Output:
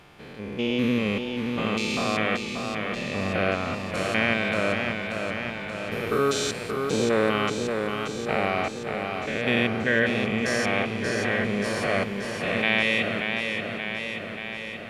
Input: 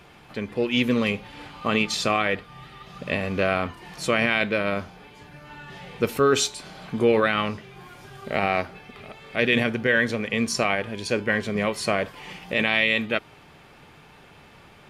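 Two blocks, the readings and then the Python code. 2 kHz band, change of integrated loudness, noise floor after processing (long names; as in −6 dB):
−0.5 dB, −2.0 dB, −35 dBFS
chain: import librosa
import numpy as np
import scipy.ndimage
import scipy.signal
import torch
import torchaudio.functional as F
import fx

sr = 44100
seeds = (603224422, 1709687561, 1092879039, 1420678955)

y = fx.spec_steps(x, sr, hold_ms=200)
y = fx.echo_warbled(y, sr, ms=581, feedback_pct=68, rate_hz=2.8, cents=56, wet_db=-5.5)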